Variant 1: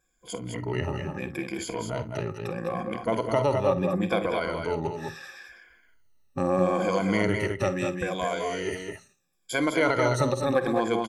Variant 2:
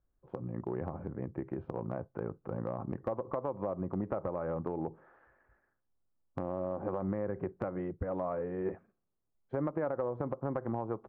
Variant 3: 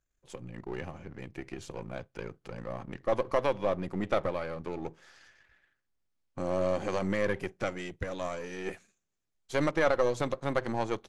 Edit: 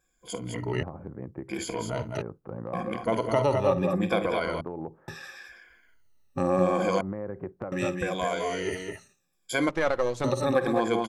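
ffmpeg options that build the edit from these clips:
-filter_complex "[1:a]asplit=4[a][b][c][d];[0:a]asplit=6[e][f][g][h][i][j];[e]atrim=end=0.832[k];[a]atrim=start=0.828:end=1.492[l];[f]atrim=start=1.488:end=2.222[m];[b]atrim=start=2.218:end=2.732[n];[g]atrim=start=2.728:end=4.612[o];[c]atrim=start=4.608:end=5.082[p];[h]atrim=start=5.078:end=7.012[q];[d]atrim=start=7.008:end=7.722[r];[i]atrim=start=7.718:end=9.692[s];[2:a]atrim=start=9.688:end=10.242[t];[j]atrim=start=10.238[u];[k][l]acrossfade=d=0.004:c1=hsin:c2=hsin[v];[v][m]acrossfade=d=0.004:c1=hsin:c2=hsin[w];[w][n]acrossfade=d=0.004:c1=hsin:c2=hsin[x];[x][o]acrossfade=d=0.004:c1=hsin:c2=hsin[y];[y][p]acrossfade=d=0.004:c1=hsin:c2=hsin[z];[z][q]acrossfade=d=0.004:c1=hsin:c2=hsin[aa];[aa][r]acrossfade=d=0.004:c1=hsin:c2=hsin[ab];[ab][s]acrossfade=d=0.004:c1=hsin:c2=hsin[ac];[ac][t]acrossfade=d=0.004:c1=hsin:c2=hsin[ad];[ad][u]acrossfade=d=0.004:c1=hsin:c2=hsin"

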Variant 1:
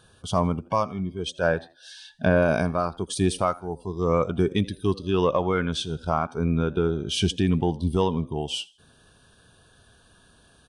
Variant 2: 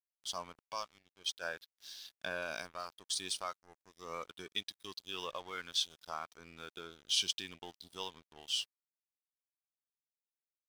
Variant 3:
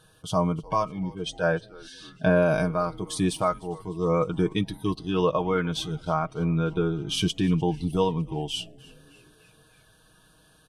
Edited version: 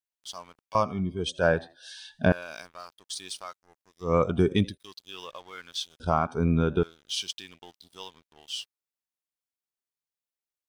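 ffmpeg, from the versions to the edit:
-filter_complex "[0:a]asplit=3[a][b][c];[1:a]asplit=4[d][e][f][g];[d]atrim=end=0.752[h];[a]atrim=start=0.748:end=2.322[i];[e]atrim=start=2.318:end=4.16[j];[b]atrim=start=4:end=4.78[k];[f]atrim=start=4.62:end=6.002[l];[c]atrim=start=5.998:end=6.832[m];[g]atrim=start=6.828[n];[h][i]acrossfade=d=0.004:c1=hsin:c2=hsin[o];[o][j]acrossfade=d=0.004:c1=hsin:c2=hsin[p];[p][k]acrossfade=d=0.16:c1=tri:c2=tri[q];[q][l]acrossfade=d=0.16:c1=tri:c2=tri[r];[r][m]acrossfade=d=0.004:c1=hsin:c2=hsin[s];[s][n]acrossfade=d=0.004:c1=hsin:c2=hsin"

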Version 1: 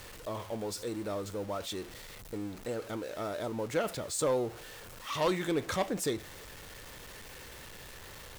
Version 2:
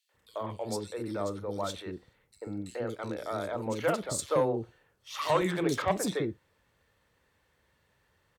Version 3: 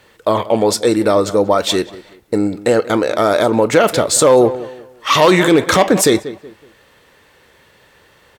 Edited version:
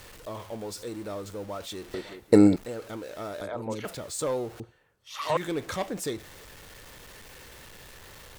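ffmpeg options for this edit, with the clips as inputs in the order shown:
-filter_complex "[1:a]asplit=2[a][b];[0:a]asplit=4[c][d][e][f];[c]atrim=end=1.942[g];[2:a]atrim=start=1.938:end=2.562[h];[d]atrim=start=2.558:end=3.412[i];[a]atrim=start=3.408:end=3.852[j];[e]atrim=start=3.848:end=4.602[k];[b]atrim=start=4.598:end=5.372[l];[f]atrim=start=5.368[m];[g][h]acrossfade=d=0.004:c1=hsin:c2=hsin[n];[n][i]acrossfade=d=0.004:c1=hsin:c2=hsin[o];[o][j]acrossfade=d=0.004:c1=hsin:c2=hsin[p];[p][k]acrossfade=d=0.004:c1=hsin:c2=hsin[q];[q][l]acrossfade=d=0.004:c1=hsin:c2=hsin[r];[r][m]acrossfade=d=0.004:c1=hsin:c2=hsin"

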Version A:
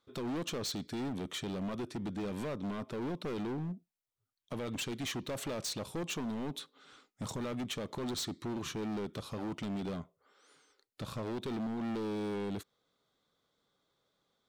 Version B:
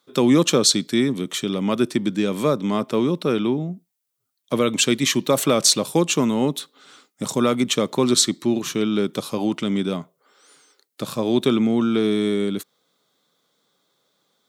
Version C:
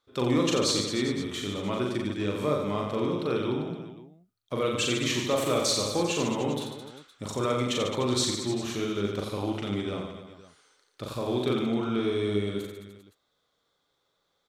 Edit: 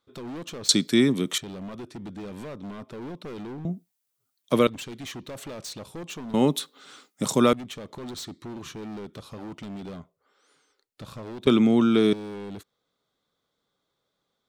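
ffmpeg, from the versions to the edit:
-filter_complex "[1:a]asplit=4[a][b][c][d];[0:a]asplit=5[e][f][g][h][i];[e]atrim=end=0.692[j];[a]atrim=start=0.688:end=1.382[k];[f]atrim=start=1.378:end=3.652[l];[b]atrim=start=3.648:end=4.672[m];[g]atrim=start=4.668:end=6.342[n];[c]atrim=start=6.338:end=7.532[o];[h]atrim=start=7.528:end=11.472[p];[d]atrim=start=11.468:end=12.132[q];[i]atrim=start=12.128[r];[j][k]acrossfade=d=0.004:c1=hsin:c2=hsin[s];[s][l]acrossfade=d=0.004:c1=hsin:c2=hsin[t];[t][m]acrossfade=d=0.004:c1=hsin:c2=hsin[u];[u][n]acrossfade=d=0.004:c1=hsin:c2=hsin[v];[v][o]acrossfade=d=0.004:c1=hsin:c2=hsin[w];[w][p]acrossfade=d=0.004:c1=hsin:c2=hsin[x];[x][q]acrossfade=d=0.004:c1=hsin:c2=hsin[y];[y][r]acrossfade=d=0.004:c1=hsin:c2=hsin"

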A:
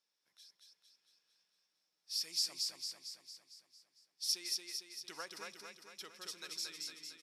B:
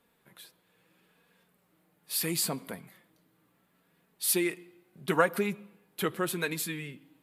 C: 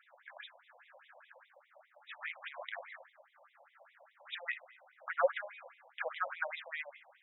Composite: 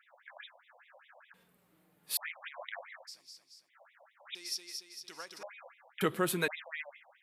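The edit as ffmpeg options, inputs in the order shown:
-filter_complex "[1:a]asplit=2[a][b];[0:a]asplit=2[c][d];[2:a]asplit=5[e][f][g][h][i];[e]atrim=end=1.342[j];[a]atrim=start=1.338:end=2.172[k];[f]atrim=start=2.168:end=3.09[l];[c]atrim=start=3.07:end=3.7[m];[g]atrim=start=3.68:end=4.352[n];[d]atrim=start=4.348:end=5.432[o];[h]atrim=start=5.428:end=6.012[p];[b]atrim=start=6.008:end=6.482[q];[i]atrim=start=6.478[r];[j][k]acrossfade=d=0.004:c1=hsin:c2=hsin[s];[s][l]acrossfade=d=0.004:c1=hsin:c2=hsin[t];[t][m]acrossfade=d=0.02:c1=tri:c2=tri[u];[u][n]acrossfade=d=0.02:c1=tri:c2=tri[v];[v][o]acrossfade=d=0.004:c1=hsin:c2=hsin[w];[w][p]acrossfade=d=0.004:c1=hsin:c2=hsin[x];[x][q]acrossfade=d=0.004:c1=hsin:c2=hsin[y];[y][r]acrossfade=d=0.004:c1=hsin:c2=hsin"

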